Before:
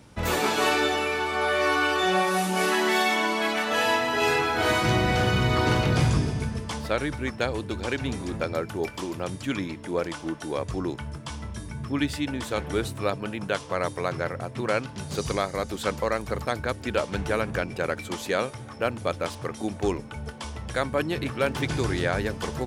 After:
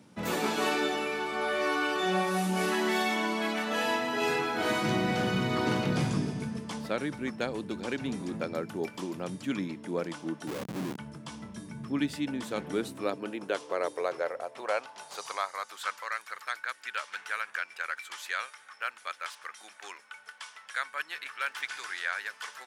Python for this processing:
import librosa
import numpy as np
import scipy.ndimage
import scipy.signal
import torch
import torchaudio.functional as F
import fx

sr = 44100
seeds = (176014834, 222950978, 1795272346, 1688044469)

y = fx.schmitt(x, sr, flips_db=-31.5, at=(10.47, 10.98))
y = fx.filter_sweep_highpass(y, sr, from_hz=190.0, to_hz=1500.0, start_s=12.51, end_s=16.14, q=2.0)
y = y * librosa.db_to_amplitude(-6.5)